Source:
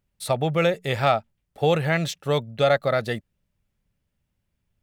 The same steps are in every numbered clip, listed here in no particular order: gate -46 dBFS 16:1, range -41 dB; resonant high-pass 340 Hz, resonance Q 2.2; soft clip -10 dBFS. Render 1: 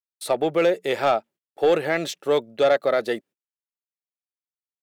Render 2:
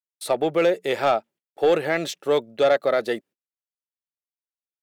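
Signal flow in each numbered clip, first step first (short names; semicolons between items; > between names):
resonant high-pass > soft clip > gate; resonant high-pass > gate > soft clip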